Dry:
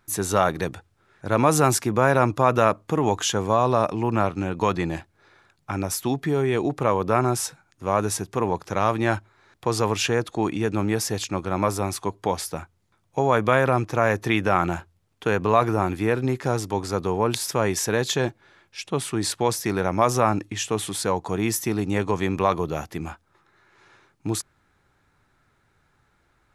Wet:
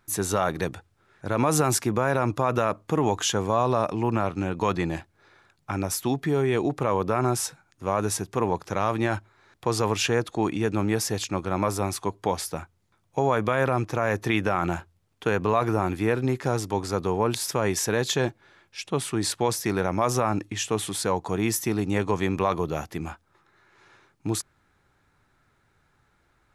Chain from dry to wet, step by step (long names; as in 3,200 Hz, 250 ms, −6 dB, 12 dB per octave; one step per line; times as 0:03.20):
brickwall limiter −9.5 dBFS, peak gain reduction 6 dB
level −1 dB